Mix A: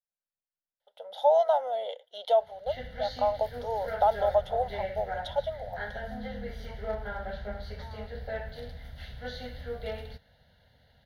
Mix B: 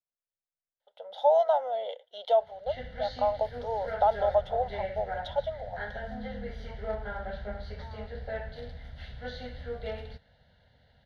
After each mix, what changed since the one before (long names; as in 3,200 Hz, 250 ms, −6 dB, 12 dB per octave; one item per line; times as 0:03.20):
master: add high-frequency loss of the air 79 metres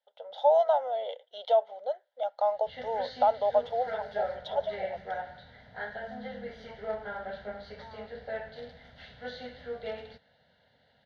first voice: entry −0.80 s
background: remove high-pass filter 100 Hz 6 dB per octave
master: add band-pass filter 220–7,200 Hz